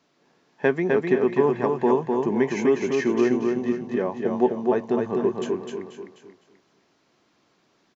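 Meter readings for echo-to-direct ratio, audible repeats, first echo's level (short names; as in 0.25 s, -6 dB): -2.5 dB, 4, -3.5 dB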